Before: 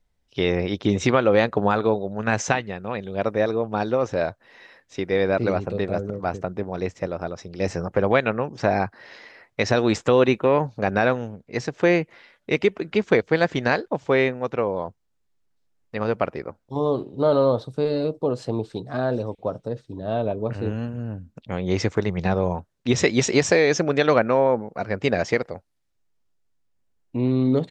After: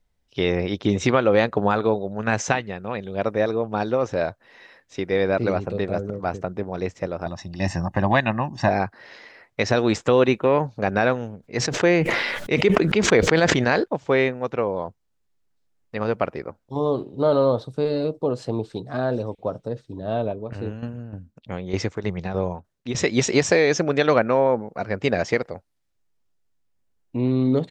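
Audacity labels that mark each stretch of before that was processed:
7.260000	8.690000	comb 1.1 ms, depth 96%
11.410000	13.840000	sustainer at most 28 dB/s
20.220000	23.120000	tremolo saw down 3.3 Hz, depth 70%

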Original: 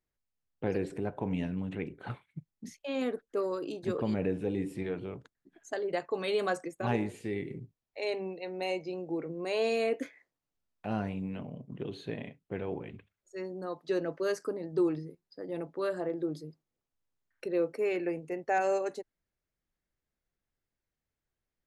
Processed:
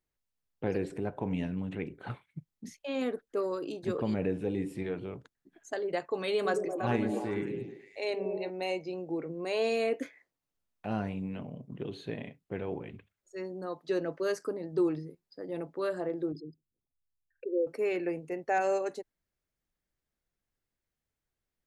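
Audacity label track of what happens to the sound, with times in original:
6.340000	8.500000	delay with a stepping band-pass 0.109 s, band-pass from 280 Hz, each repeat 0.7 oct, level -0.5 dB
16.320000	17.670000	formant sharpening exponent 3

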